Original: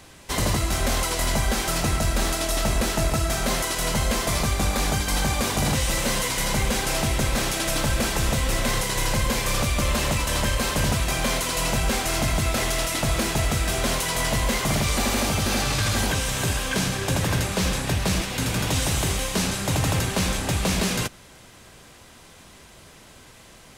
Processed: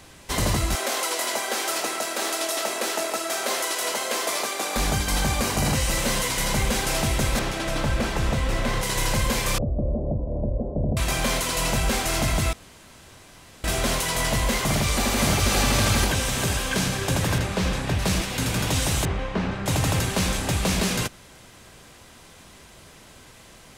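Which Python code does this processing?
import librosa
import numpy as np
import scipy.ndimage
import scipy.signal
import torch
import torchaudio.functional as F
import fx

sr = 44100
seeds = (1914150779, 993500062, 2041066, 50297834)

y = fx.highpass(x, sr, hz=330.0, slope=24, at=(0.75, 4.76))
y = fx.notch(y, sr, hz=3500.0, q=12.0, at=(5.41, 5.94))
y = fx.lowpass(y, sr, hz=2600.0, slope=6, at=(7.39, 8.83))
y = fx.ellip_lowpass(y, sr, hz=650.0, order=4, stop_db=70, at=(9.58, 10.97))
y = fx.echo_throw(y, sr, start_s=14.62, length_s=0.85, ms=570, feedback_pct=35, wet_db=-1.5)
y = fx.high_shelf(y, sr, hz=5500.0, db=-10.5, at=(17.38, 17.99))
y = fx.lowpass(y, sr, hz=1900.0, slope=12, at=(19.05, 19.66))
y = fx.edit(y, sr, fx.room_tone_fill(start_s=12.53, length_s=1.11), tone=tone)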